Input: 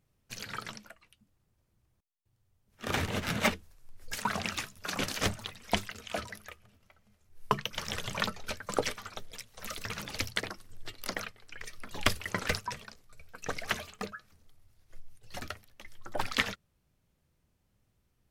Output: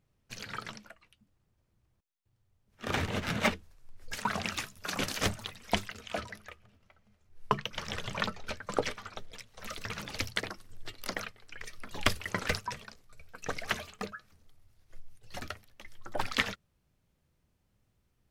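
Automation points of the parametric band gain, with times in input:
parametric band 14,000 Hz 1.4 octaves
0:04.13 −7 dB
0:04.63 0 dB
0:05.52 0 dB
0:06.46 −11.5 dB
0:09.31 −11.5 dB
0:10.33 −3 dB

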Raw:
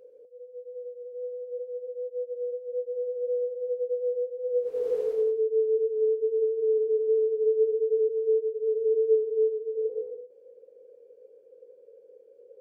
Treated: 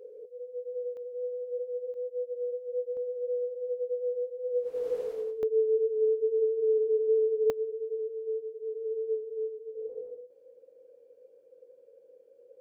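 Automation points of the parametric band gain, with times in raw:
parametric band 420 Hz 0.25 octaves
+14.5 dB
from 0:00.97 +3.5 dB
from 0:01.94 −5 dB
from 0:02.97 −12 dB
from 0:05.43 −1.5 dB
from 0:07.50 −12.5 dB

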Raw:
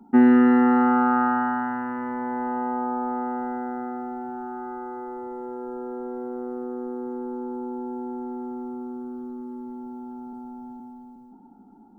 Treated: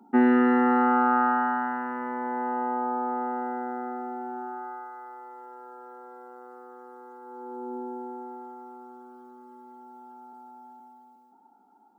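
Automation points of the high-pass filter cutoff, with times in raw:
0:04.38 310 Hz
0:04.91 1,000 Hz
0:07.21 1,000 Hz
0:07.75 300 Hz
0:08.56 700 Hz

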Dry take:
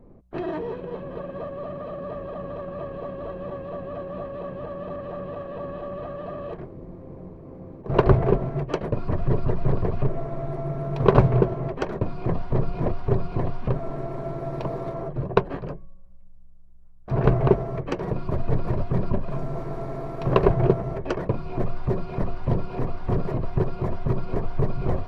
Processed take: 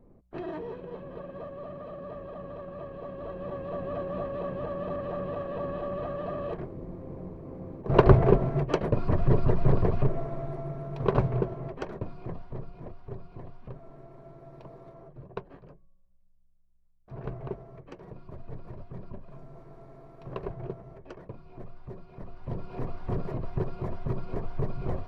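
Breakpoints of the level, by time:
0:02.96 −7 dB
0:03.89 0 dB
0:09.87 0 dB
0:10.88 −8.5 dB
0:11.90 −8.5 dB
0:12.82 −18 dB
0:22.15 −18 dB
0:22.81 −7 dB

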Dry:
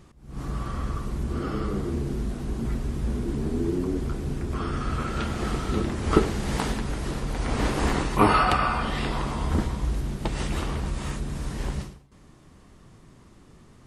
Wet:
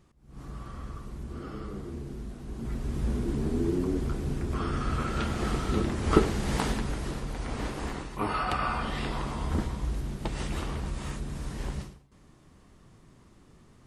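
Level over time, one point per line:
0:02.43 −10 dB
0:02.99 −1.5 dB
0:06.80 −1.5 dB
0:08.18 −13 dB
0:08.70 −4.5 dB

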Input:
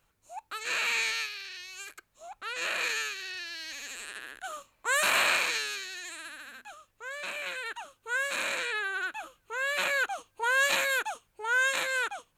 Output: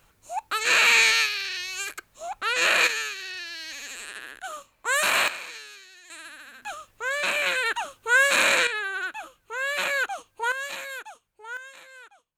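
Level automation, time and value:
+11 dB
from 0:02.87 +3 dB
from 0:05.28 −9.5 dB
from 0:06.10 +0.5 dB
from 0:06.62 +11.5 dB
from 0:08.67 +2.5 dB
from 0:10.52 −8 dB
from 0:11.57 −17.5 dB

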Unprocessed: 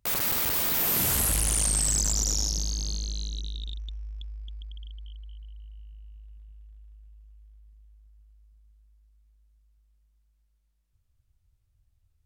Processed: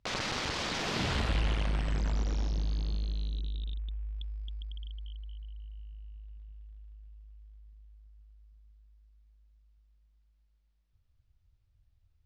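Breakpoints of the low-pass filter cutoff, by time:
low-pass filter 24 dB per octave
0:00.80 5,500 Hz
0:01.73 2,900 Hz
0:03.92 2,900 Hz
0:04.41 5,300 Hz

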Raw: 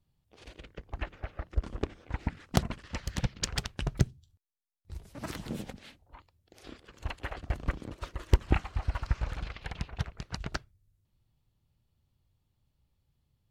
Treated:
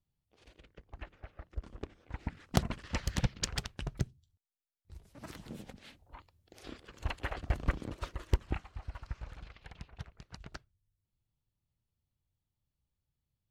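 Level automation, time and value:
0:01.89 −10 dB
0:02.98 +2.5 dB
0:04.08 −8.5 dB
0:05.61 −8.5 dB
0:06.01 +0.5 dB
0:08.01 +0.5 dB
0:08.63 −11.5 dB

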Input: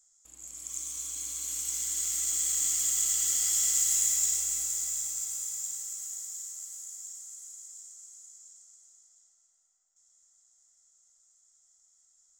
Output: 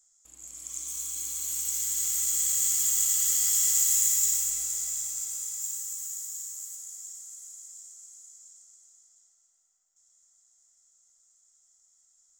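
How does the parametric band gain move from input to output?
parametric band 16,000 Hz 0.68 octaves
+1 dB
from 0:00.88 +11 dB
from 0:04.50 +3.5 dB
from 0:05.61 +10.5 dB
from 0:06.76 +4.5 dB

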